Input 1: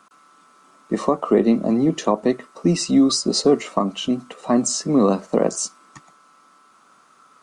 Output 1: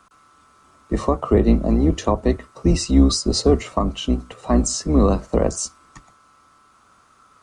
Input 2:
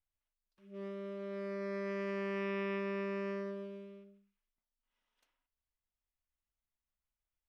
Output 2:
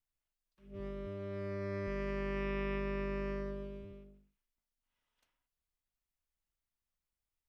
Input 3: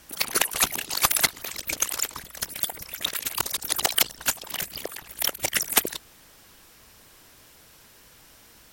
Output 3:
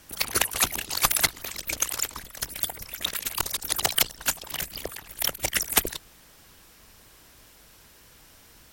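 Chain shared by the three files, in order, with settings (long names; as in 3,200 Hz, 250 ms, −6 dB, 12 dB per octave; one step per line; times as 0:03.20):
sub-octave generator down 2 octaves, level +1 dB
level −1 dB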